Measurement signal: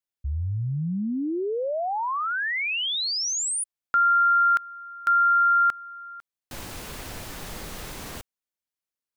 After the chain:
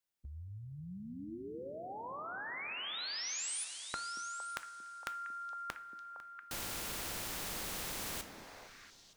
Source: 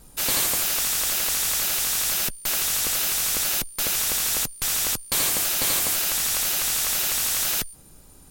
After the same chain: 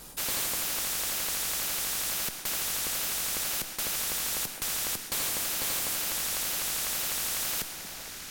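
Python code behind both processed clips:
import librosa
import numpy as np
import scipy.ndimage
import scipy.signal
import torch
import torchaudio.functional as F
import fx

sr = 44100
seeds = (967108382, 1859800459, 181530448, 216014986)

y = fx.echo_stepped(x, sr, ms=230, hz=260.0, octaves=1.4, feedback_pct=70, wet_db=-7.0)
y = fx.rev_double_slope(y, sr, seeds[0], early_s=0.33, late_s=3.6, knee_db=-18, drr_db=11.5)
y = fx.spectral_comp(y, sr, ratio=2.0)
y = y * 10.0 ** (-7.0 / 20.0)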